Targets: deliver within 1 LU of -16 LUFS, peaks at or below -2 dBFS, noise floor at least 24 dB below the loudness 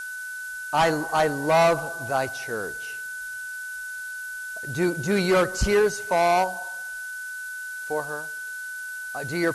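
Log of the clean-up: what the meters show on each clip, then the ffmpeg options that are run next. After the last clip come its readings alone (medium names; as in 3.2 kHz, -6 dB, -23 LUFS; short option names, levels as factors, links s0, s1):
steady tone 1.5 kHz; tone level -32 dBFS; noise floor -35 dBFS; noise floor target -50 dBFS; loudness -26.0 LUFS; peak level -12.0 dBFS; loudness target -16.0 LUFS
-> -af "bandreject=f=1500:w=30"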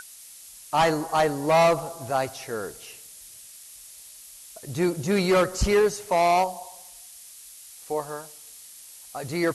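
steady tone not found; noise floor -46 dBFS; noise floor target -48 dBFS
-> -af "afftdn=nr=6:nf=-46"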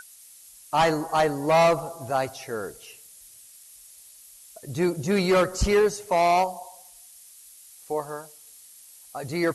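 noise floor -50 dBFS; loudness -24.0 LUFS; peak level -12.5 dBFS; loudness target -16.0 LUFS
-> -af "volume=2.51"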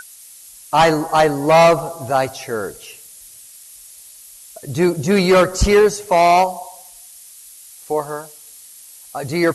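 loudness -16.0 LUFS; peak level -4.5 dBFS; noise floor -42 dBFS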